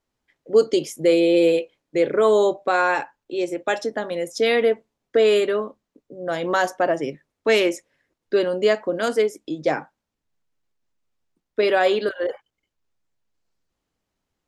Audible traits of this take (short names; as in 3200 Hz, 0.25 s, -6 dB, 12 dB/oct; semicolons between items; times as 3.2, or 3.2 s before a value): noise floor -82 dBFS; spectral tilt -2.5 dB/oct